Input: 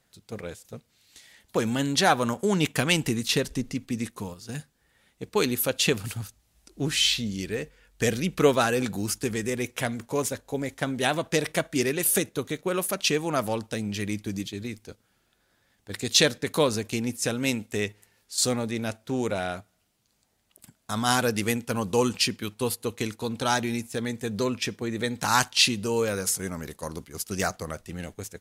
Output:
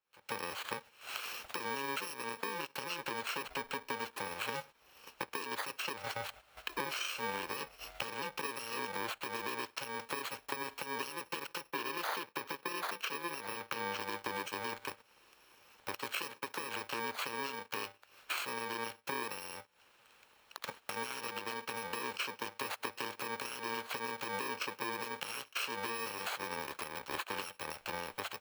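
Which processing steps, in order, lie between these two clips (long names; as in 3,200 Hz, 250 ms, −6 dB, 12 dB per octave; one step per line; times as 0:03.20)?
samples in bit-reversed order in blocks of 64 samples
camcorder AGC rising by 79 dB per second
0:11.68–0:14.01: parametric band 7,800 Hz −6.5 dB 0.49 octaves
noise gate −31 dBFS, range −14 dB
downward compressor 2 to 1, threshold −36 dBFS, peak gain reduction 13 dB
three-way crossover with the lows and the highs turned down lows −24 dB, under 450 Hz, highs −18 dB, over 3,600 Hz
level +1 dB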